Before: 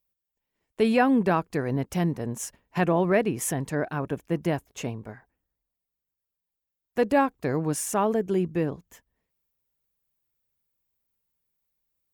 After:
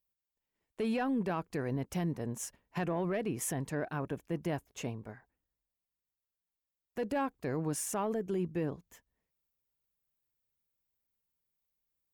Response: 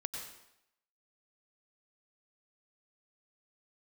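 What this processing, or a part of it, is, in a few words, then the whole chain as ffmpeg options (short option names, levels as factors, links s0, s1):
soft clipper into limiter: -af "asoftclip=type=tanh:threshold=0.237,alimiter=limit=0.1:level=0:latency=1:release=23,volume=0.501"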